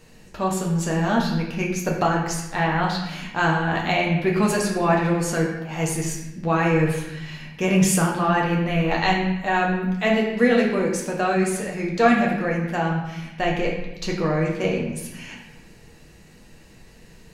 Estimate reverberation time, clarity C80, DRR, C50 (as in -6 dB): 0.95 s, 6.0 dB, -2.5 dB, 4.0 dB